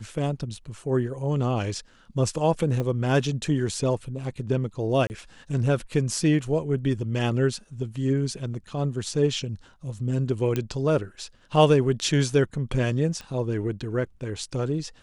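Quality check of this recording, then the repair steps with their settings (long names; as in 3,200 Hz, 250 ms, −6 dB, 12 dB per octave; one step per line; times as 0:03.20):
0:02.80: click −17 dBFS
0:05.07–0:05.10: drop-out 29 ms
0:10.56: click −13 dBFS
0:13.21: click −23 dBFS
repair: click removal
repair the gap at 0:05.07, 29 ms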